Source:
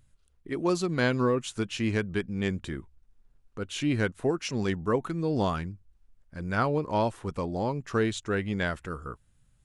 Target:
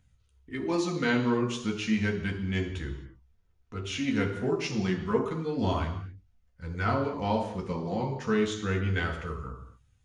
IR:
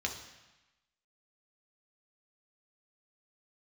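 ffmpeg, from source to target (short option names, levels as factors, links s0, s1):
-filter_complex "[0:a]flanger=delay=1.2:depth=4.4:regen=-40:speed=0.33:shape=triangular[s0];[1:a]atrim=start_sample=2205,afade=t=out:st=0.31:d=0.01,atrim=end_sample=14112[s1];[s0][s1]afir=irnorm=-1:irlink=0,asetrate=42336,aresample=44100"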